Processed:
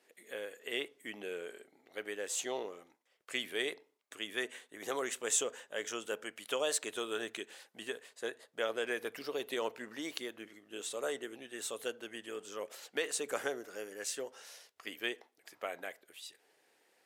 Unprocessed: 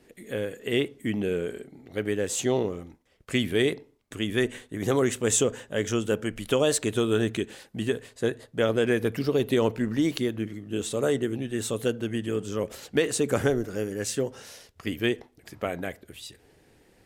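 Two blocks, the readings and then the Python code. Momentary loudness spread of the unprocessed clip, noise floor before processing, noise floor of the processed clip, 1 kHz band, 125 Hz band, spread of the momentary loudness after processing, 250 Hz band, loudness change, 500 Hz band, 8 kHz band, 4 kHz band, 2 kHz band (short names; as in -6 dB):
11 LU, -61 dBFS, -74 dBFS, -7.5 dB, -33.0 dB, 13 LU, -19.5 dB, -11.5 dB, -13.0 dB, -6.5 dB, -6.5 dB, -6.5 dB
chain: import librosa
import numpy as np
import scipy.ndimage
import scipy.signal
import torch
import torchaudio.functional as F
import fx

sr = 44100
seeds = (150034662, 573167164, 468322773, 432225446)

y = scipy.signal.sosfilt(scipy.signal.butter(2, 610.0, 'highpass', fs=sr, output='sos'), x)
y = y * librosa.db_to_amplitude(-6.5)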